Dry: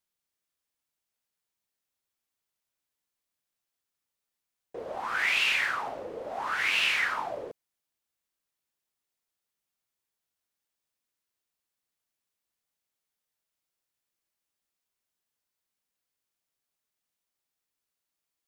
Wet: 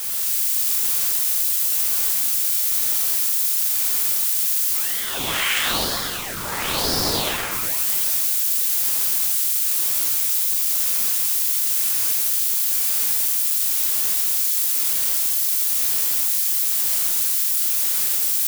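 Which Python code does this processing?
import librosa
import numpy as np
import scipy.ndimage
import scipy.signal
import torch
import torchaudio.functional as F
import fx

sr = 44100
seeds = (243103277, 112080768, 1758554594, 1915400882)

y = x + 0.5 * 10.0 ** (-19.5 / 20.0) * np.diff(np.sign(x), prepend=np.sign(x[:1]))
y = y + 10.0 ** (-6.0 / 20.0) * np.pad(y, (int(253 * sr / 1000.0), 0))[:len(y)]
y = fx.rev_gated(y, sr, seeds[0], gate_ms=340, shape='flat', drr_db=-6.0)
y = fx.ring_lfo(y, sr, carrier_hz=1500.0, swing_pct=75, hz=1.0)
y = F.gain(torch.from_numpy(y), -1.5).numpy()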